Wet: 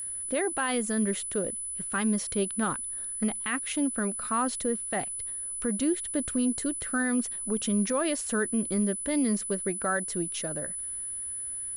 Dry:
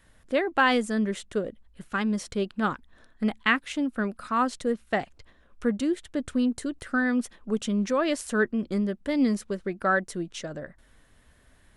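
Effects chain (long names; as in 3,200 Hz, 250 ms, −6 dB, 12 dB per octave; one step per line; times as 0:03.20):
brickwall limiter −20 dBFS, peak gain reduction 12 dB
steady tone 10,000 Hz −33 dBFS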